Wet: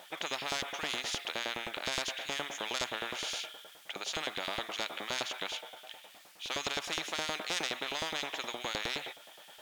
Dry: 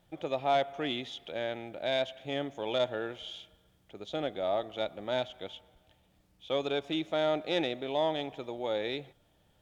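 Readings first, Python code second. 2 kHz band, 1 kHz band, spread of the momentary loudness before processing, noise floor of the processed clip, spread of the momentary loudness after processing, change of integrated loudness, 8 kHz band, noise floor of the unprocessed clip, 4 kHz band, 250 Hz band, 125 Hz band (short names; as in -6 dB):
+4.5 dB, -3.5 dB, 10 LU, -56 dBFS, 11 LU, -2.5 dB, n/a, -68 dBFS, +3.5 dB, -9.5 dB, -7.5 dB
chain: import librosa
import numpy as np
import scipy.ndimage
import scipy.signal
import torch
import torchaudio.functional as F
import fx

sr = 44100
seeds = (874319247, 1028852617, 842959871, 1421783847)

y = fx.filter_lfo_highpass(x, sr, shape='saw_up', hz=9.6, low_hz=480.0, high_hz=2900.0, q=0.89)
y = fx.spectral_comp(y, sr, ratio=4.0)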